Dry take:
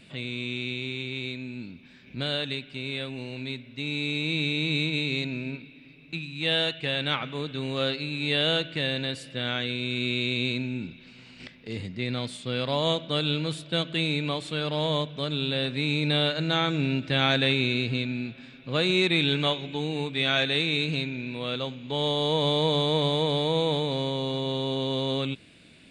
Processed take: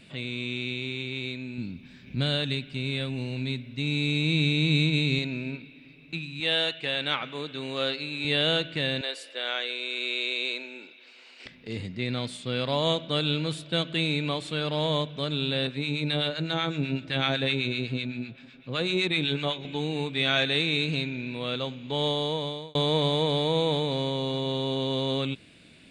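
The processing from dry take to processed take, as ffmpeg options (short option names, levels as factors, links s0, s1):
-filter_complex "[0:a]asettb=1/sr,asplit=3[s0][s1][s2];[s0]atrim=end=1.584[s3];[s1]atrim=start=1.58:end=5.19,asetpts=PTS-STARTPTS,afade=t=in:d=0.004:c=qsin,afade=t=out:st=3.606:d=0.004:c=qsin,bass=f=250:g=8,treble=f=4000:g=3[s4];[s2]atrim=start=5.186[s5];[s3][s4]acrossfade=d=0.004:c1=hsin:c2=qsin[s6];[s6][s5]acrossfade=d=0.004:c1=qsin:c2=hsin,asettb=1/sr,asplit=3[s7][s8][s9];[s7]atrim=end=6.404[s10];[s8]atrim=start=6.4:end=8.25,asetpts=PTS-STARTPTS,afade=t=in:d=0.004:c=qsin,afade=t=out:st=1.846:d=0.004:c=qsin,highpass=f=310:p=1[s11];[s9]atrim=start=8.246[s12];[s10][s11]acrossfade=d=0.004:c1=hsin:c2=qsin[s13];[s13][s12]acrossfade=d=0.004:c1=qsin:c2=hsin,asettb=1/sr,asplit=3[s14][s15][s16];[s14]atrim=end=9.014[s17];[s15]atrim=start=9.01:end=11.46,asetpts=PTS-STARTPTS,afade=t=in:d=0.004:c=qsin,afade=t=out:st=2.446:d=0.004:c=qsin,highpass=f=410:w=0.5412,highpass=f=410:w=1.3066[s18];[s16]atrim=start=11.456[s19];[s17][s18]acrossfade=d=0.004:c1=hsin:c2=qsin[s20];[s20][s19]acrossfade=d=0.004:c1=qsin:c2=hsin,asettb=1/sr,asplit=3[s21][s22][s23];[s21]atrim=end=15.674[s24];[s22]atrim=start=15.67:end=19.65,asetpts=PTS-STARTPTS,afade=t=in:d=0.004:c=qsin,afade=t=out:st=3.976:d=0.004:c=qsin,acrossover=split=1000[s25][s26];[s25]aeval=exprs='val(0)*(1-0.7/2+0.7/2*cos(2*PI*7.9*n/s))':c=same[s27];[s26]aeval=exprs='val(0)*(1-0.7/2-0.7/2*cos(2*PI*7.9*n/s))':c=same[s28];[s27][s28]amix=inputs=2:normalize=0[s29];[s23]atrim=start=19.646[s30];[s24][s29]acrossfade=d=0.004:c1=hsin:c2=qsin[s31];[s31][s30]acrossfade=d=0.004:c1=qsin:c2=hsin,asplit=2[s32][s33];[s32]atrim=end=22.75,asetpts=PTS-STARTPTS,afade=t=out:st=22.06:d=0.69[s34];[s33]atrim=start=22.75,asetpts=PTS-STARTPTS,afade=t=in:d=0.004:c=hsin[s35];[s34][s35]concat=n=2:v=0:a=1"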